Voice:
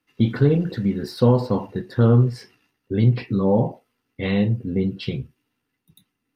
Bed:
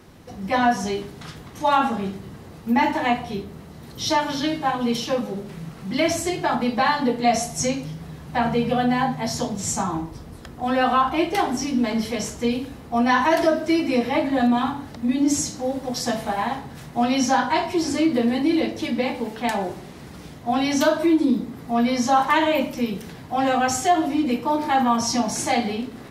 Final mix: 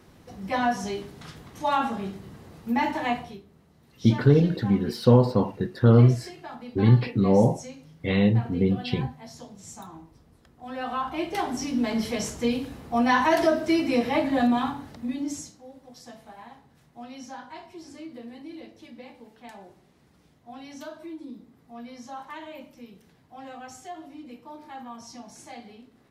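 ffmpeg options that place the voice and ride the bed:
-filter_complex "[0:a]adelay=3850,volume=-0.5dB[a];[1:a]volume=10dB,afade=t=out:st=3.18:d=0.22:silence=0.237137,afade=t=in:st=10.57:d=1.5:silence=0.16788,afade=t=out:st=14.42:d=1.17:silence=0.11885[b];[a][b]amix=inputs=2:normalize=0"

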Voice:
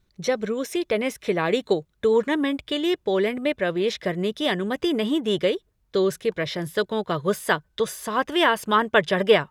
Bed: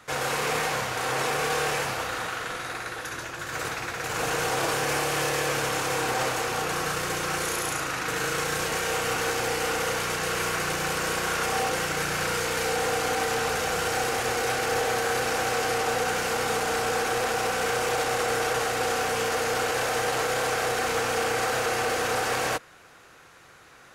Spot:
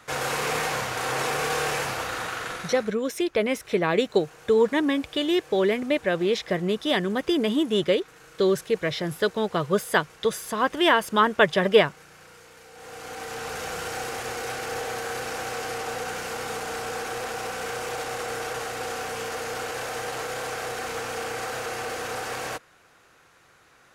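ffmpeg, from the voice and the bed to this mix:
-filter_complex "[0:a]adelay=2450,volume=0dB[a];[1:a]volume=17dB,afade=t=out:st=2.5:d=0.46:silence=0.0749894,afade=t=in:st=12.72:d=0.92:silence=0.141254[b];[a][b]amix=inputs=2:normalize=0"

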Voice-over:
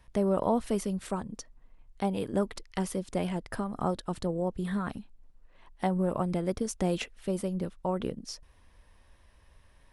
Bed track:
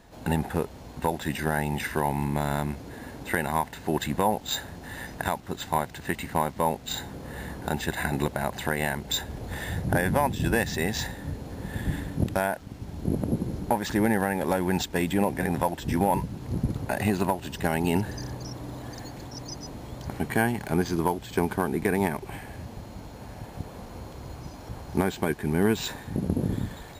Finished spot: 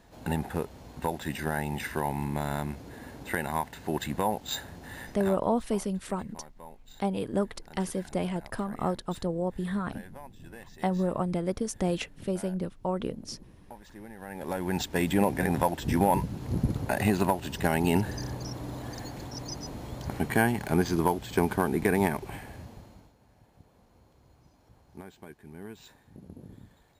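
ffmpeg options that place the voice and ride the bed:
-filter_complex "[0:a]adelay=5000,volume=0.5dB[a];[1:a]volume=18.5dB,afade=t=out:st=4.97:d=0.58:silence=0.11885,afade=t=in:st=14.17:d=0.94:silence=0.0749894,afade=t=out:st=22.1:d=1.05:silence=0.0944061[b];[a][b]amix=inputs=2:normalize=0"

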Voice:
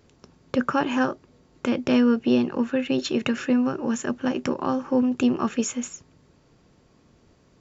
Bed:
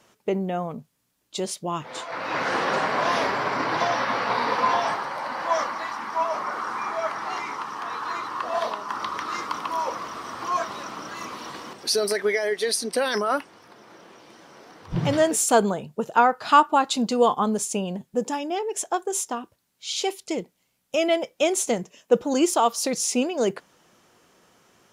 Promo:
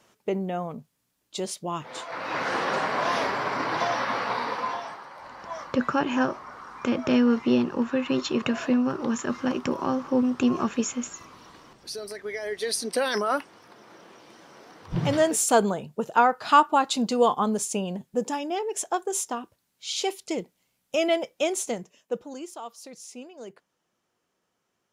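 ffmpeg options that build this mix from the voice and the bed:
-filter_complex "[0:a]adelay=5200,volume=-1.5dB[a];[1:a]volume=9dB,afade=t=out:st=4.18:d=0.71:silence=0.298538,afade=t=in:st=12.23:d=0.67:silence=0.266073,afade=t=out:st=21.1:d=1.33:silence=0.141254[b];[a][b]amix=inputs=2:normalize=0"

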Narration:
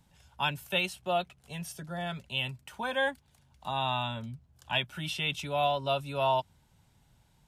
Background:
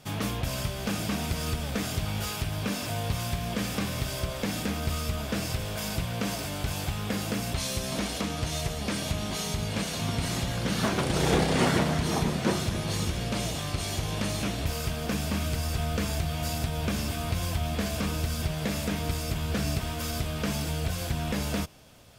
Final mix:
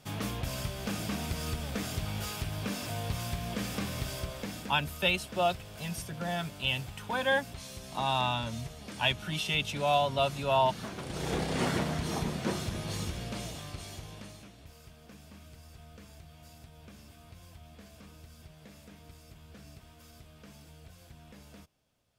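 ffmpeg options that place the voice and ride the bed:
-filter_complex "[0:a]adelay=4300,volume=1.5dB[a];[1:a]volume=3dB,afade=t=out:st=4.09:d=0.69:silence=0.354813,afade=t=in:st=10.97:d=0.69:silence=0.421697,afade=t=out:st=12.99:d=1.5:silence=0.149624[b];[a][b]amix=inputs=2:normalize=0"

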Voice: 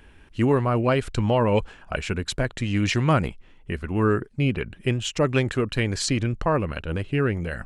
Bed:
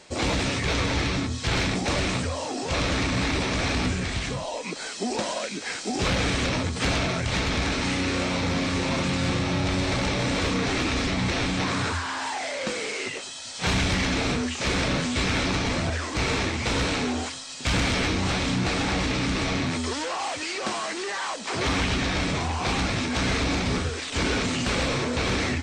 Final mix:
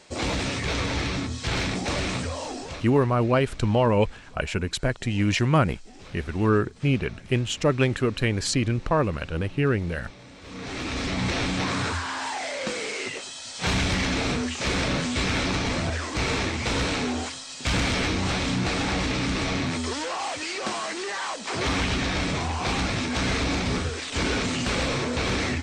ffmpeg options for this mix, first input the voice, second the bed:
-filter_complex "[0:a]adelay=2450,volume=0dB[a];[1:a]volume=19dB,afade=t=out:st=2.47:d=0.39:silence=0.105925,afade=t=in:st=10.42:d=0.84:silence=0.0891251[b];[a][b]amix=inputs=2:normalize=0"

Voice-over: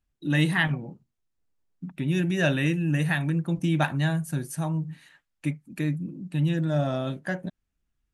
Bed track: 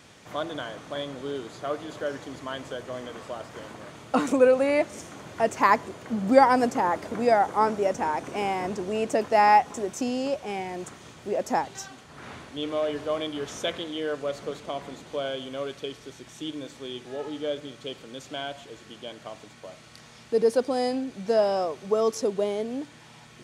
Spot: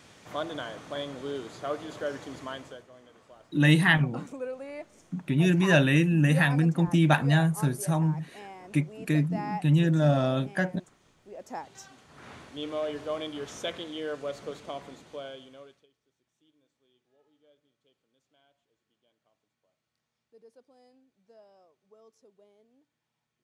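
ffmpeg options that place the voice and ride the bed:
-filter_complex "[0:a]adelay=3300,volume=2.5dB[a];[1:a]volume=11dB,afade=t=out:st=2.42:d=0.46:silence=0.16788,afade=t=in:st=11.32:d=1.12:silence=0.223872,afade=t=out:st=14.68:d=1.19:silence=0.0334965[b];[a][b]amix=inputs=2:normalize=0"

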